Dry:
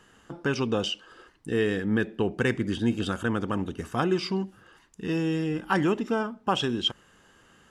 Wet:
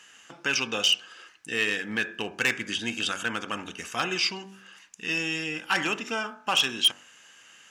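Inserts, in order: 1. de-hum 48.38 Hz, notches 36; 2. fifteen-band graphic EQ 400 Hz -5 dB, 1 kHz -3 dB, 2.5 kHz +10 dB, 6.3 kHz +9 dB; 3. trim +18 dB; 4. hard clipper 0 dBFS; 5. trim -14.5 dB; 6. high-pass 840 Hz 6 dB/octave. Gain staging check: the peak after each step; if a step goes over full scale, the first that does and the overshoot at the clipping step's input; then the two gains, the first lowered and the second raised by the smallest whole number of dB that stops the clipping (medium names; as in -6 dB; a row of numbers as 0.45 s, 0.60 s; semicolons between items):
-11.0 dBFS, -9.0 dBFS, +9.0 dBFS, 0.0 dBFS, -14.5 dBFS, -10.5 dBFS; step 3, 9.0 dB; step 3 +9 dB, step 5 -5.5 dB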